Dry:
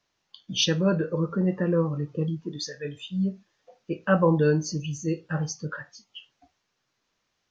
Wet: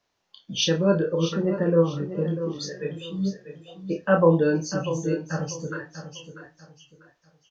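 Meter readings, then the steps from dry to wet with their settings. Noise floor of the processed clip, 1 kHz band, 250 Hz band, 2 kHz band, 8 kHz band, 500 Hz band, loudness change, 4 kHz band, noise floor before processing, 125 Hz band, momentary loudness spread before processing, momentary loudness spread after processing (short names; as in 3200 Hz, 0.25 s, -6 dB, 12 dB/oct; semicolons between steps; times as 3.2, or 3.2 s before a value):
-73 dBFS, +2.0 dB, +1.0 dB, +1.0 dB, n/a, +4.0 dB, +2.0 dB, 0.0 dB, -77 dBFS, 0.0 dB, 14 LU, 20 LU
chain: bell 580 Hz +5.5 dB 1.6 oct; doubler 30 ms -5 dB; feedback echo 0.643 s, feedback 29%, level -11 dB; gain -2 dB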